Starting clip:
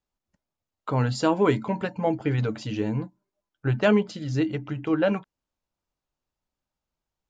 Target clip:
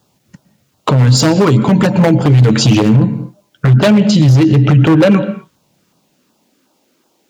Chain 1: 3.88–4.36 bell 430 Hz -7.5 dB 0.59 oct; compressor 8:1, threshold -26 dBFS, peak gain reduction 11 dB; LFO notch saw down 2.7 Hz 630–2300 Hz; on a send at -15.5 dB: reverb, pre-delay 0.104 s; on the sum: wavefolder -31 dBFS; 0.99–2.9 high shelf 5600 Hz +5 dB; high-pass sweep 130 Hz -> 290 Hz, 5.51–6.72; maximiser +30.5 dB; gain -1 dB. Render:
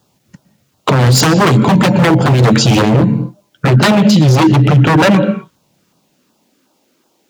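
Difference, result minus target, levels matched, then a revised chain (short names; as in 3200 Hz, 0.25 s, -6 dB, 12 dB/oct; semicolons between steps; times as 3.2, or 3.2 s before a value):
compressor: peak gain reduction -5 dB
3.88–4.36 bell 430 Hz -7.5 dB 0.59 oct; compressor 8:1, threshold -32 dBFS, peak gain reduction 16.5 dB; LFO notch saw down 2.7 Hz 630–2300 Hz; on a send at -15.5 dB: reverb, pre-delay 0.104 s; on the sum: wavefolder -31 dBFS; 0.99–2.9 high shelf 5600 Hz +5 dB; high-pass sweep 130 Hz -> 290 Hz, 5.51–6.72; maximiser +30.5 dB; gain -1 dB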